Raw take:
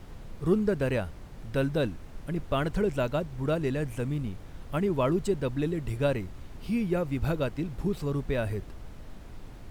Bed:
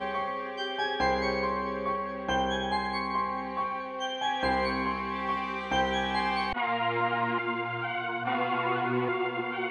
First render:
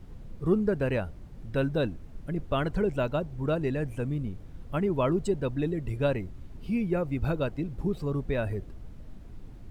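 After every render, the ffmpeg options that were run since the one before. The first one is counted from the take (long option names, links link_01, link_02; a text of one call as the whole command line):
ffmpeg -i in.wav -af "afftdn=noise_reduction=9:noise_floor=-45" out.wav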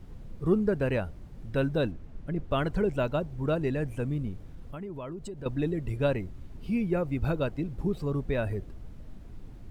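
ffmpeg -i in.wav -filter_complex "[0:a]asettb=1/sr,asplit=3[link_01][link_02][link_03];[link_01]atrim=end=1.914[link_04];[link_02]atrim=start=1.91:end=2.51,asetpts=PTS-STARTPTS,afade=type=in:duration=0.004:curve=qsin,afade=type=out:start_time=0.596:duration=0.004:curve=qsin,lowpass=frequency=3900:poles=1[link_05];[link_03]atrim=start=2.506[link_06];[link_04][link_05]acrossfade=duration=0.004:curve1=hsin:curve2=qsin[link_07];[link_07][link_06]acrossfade=duration=0.004:curve1=qsin:curve2=hsin,asettb=1/sr,asplit=3[link_08][link_09][link_10];[link_08]atrim=end=4.534[link_11];[link_09]atrim=start=4.53:end=5.46,asetpts=PTS-STARTPTS,afade=type=in:duration=0.004:curve=qsin,afade=type=out:start_time=0.926:duration=0.004:curve=qsin,acompressor=threshold=-37dB:ratio=4:attack=3.2:release=140:knee=1:detection=peak[link_12];[link_10]atrim=start=5.456[link_13];[link_11][link_12]acrossfade=duration=0.004:curve1=hsin:curve2=qsin[link_14];[link_14][link_13]acrossfade=duration=0.004:curve1=qsin:curve2=hsin" out.wav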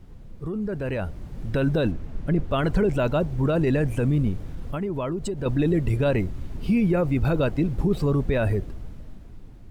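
ffmpeg -i in.wav -af "alimiter=level_in=0.5dB:limit=-24dB:level=0:latency=1:release=14,volume=-0.5dB,dynaudnorm=framelen=100:gausssize=21:maxgain=10.5dB" out.wav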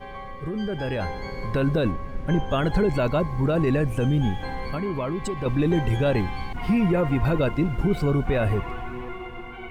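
ffmpeg -i in.wav -i bed.wav -filter_complex "[1:a]volume=-7dB[link_01];[0:a][link_01]amix=inputs=2:normalize=0" out.wav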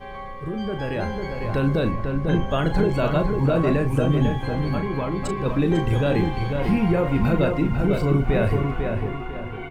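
ffmpeg -i in.wav -filter_complex "[0:a]asplit=2[link_01][link_02];[link_02]adelay=36,volume=-8.5dB[link_03];[link_01][link_03]amix=inputs=2:normalize=0,asplit=2[link_04][link_05];[link_05]adelay=498,lowpass=frequency=2500:poles=1,volume=-4.5dB,asplit=2[link_06][link_07];[link_07]adelay=498,lowpass=frequency=2500:poles=1,volume=0.36,asplit=2[link_08][link_09];[link_09]adelay=498,lowpass=frequency=2500:poles=1,volume=0.36,asplit=2[link_10][link_11];[link_11]adelay=498,lowpass=frequency=2500:poles=1,volume=0.36,asplit=2[link_12][link_13];[link_13]adelay=498,lowpass=frequency=2500:poles=1,volume=0.36[link_14];[link_06][link_08][link_10][link_12][link_14]amix=inputs=5:normalize=0[link_15];[link_04][link_15]amix=inputs=2:normalize=0" out.wav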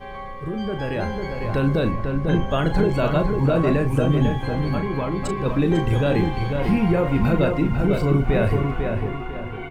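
ffmpeg -i in.wav -af "volume=1dB" out.wav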